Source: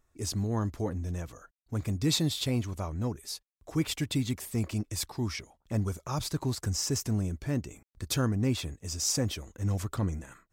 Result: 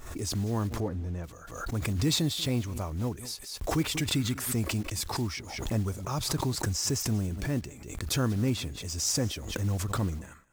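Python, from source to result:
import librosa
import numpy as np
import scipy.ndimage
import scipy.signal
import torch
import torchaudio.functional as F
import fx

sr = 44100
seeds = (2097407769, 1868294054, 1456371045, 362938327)

y = fx.block_float(x, sr, bits=5)
y = fx.lowpass(y, sr, hz=1900.0, slope=6, at=(0.8, 1.24))
y = fx.peak_eq(y, sr, hz=1400.0, db=fx.line((4.04, 7.0), (4.52, 14.5)), octaves=0.52, at=(4.04, 4.52), fade=0.02)
y = y + 10.0 ** (-21.5 / 20.0) * np.pad(y, (int(189 * sr / 1000.0), 0))[:len(y)]
y = fx.pre_swell(y, sr, db_per_s=57.0)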